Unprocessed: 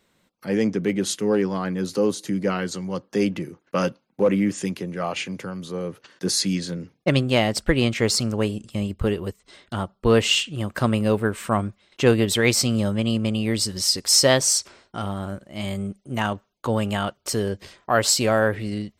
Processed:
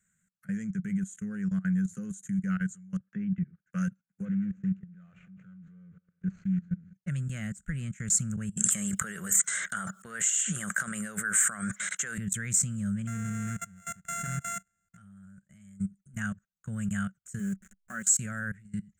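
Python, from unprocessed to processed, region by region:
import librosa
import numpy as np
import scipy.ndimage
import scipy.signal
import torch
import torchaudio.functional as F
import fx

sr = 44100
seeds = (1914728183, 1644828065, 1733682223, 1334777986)

y = fx.chain(x, sr, fx.dynamic_eq(hz=210.0, q=0.83, threshold_db=-35.0, ratio=4.0, max_db=5),
    fx.lowpass(hz=3200.0, slope=24), at=(2.97, 3.62))
y = fx.chain(y, sr, fx.median_filter(points=25),
    fx.lowpass(hz=4300.0, slope=24),
    fx.echo_heads(ms=68, heads='first and third', feedback_pct=54, wet_db=-20.0), at=(4.25, 6.93))
y = fx.chain(y, sr, fx.highpass(hz=590.0, slope=12),
    fx.peak_eq(hz=2600.0, db=-9.0, octaves=0.22),
    fx.env_flatten(amount_pct=100), at=(8.57, 12.18))
y = fx.chain(y, sr, fx.sample_sort(block=64),
    fx.lowpass(hz=4000.0, slope=6), at=(13.07, 14.97))
y = fx.chain(y, sr, fx.delta_hold(step_db=-34.5),
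    fx.low_shelf_res(hz=180.0, db=-7.0, q=3.0),
    fx.comb(ms=5.3, depth=0.41), at=(17.39, 18.17))
y = fx.dynamic_eq(y, sr, hz=210.0, q=0.88, threshold_db=-34.0, ratio=4.0, max_db=5)
y = fx.level_steps(y, sr, step_db=23)
y = fx.curve_eq(y, sr, hz=(110.0, 190.0, 280.0, 670.0, 950.0, 1500.0, 2800.0, 4900.0, 7000.0, 11000.0), db=(0, 5, -21, -19, -25, 5, -12, -21, 14, -2))
y = y * librosa.db_to_amplitude(-6.5)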